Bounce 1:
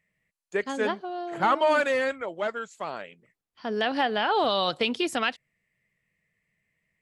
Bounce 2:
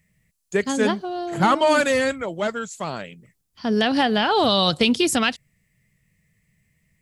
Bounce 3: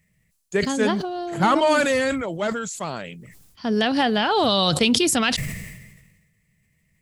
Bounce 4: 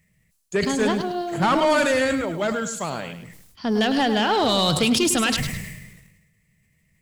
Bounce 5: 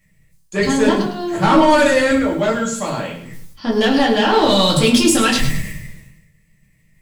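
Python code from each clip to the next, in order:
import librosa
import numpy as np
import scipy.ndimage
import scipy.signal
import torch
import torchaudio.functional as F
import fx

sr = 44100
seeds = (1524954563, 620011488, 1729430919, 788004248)

y1 = fx.bass_treble(x, sr, bass_db=15, treble_db=12)
y1 = F.gain(torch.from_numpy(y1), 3.5).numpy()
y2 = fx.sustainer(y1, sr, db_per_s=44.0)
y2 = F.gain(torch.from_numpy(y2), -1.0).numpy()
y3 = 10.0 ** (-15.5 / 20.0) * np.tanh(y2 / 10.0 ** (-15.5 / 20.0))
y3 = fx.echo_crushed(y3, sr, ms=104, feedback_pct=35, bits=8, wet_db=-9.5)
y3 = F.gain(torch.from_numpy(y3), 1.5).numpy()
y4 = fx.room_shoebox(y3, sr, seeds[0], volume_m3=120.0, walls='furnished', distance_m=2.3)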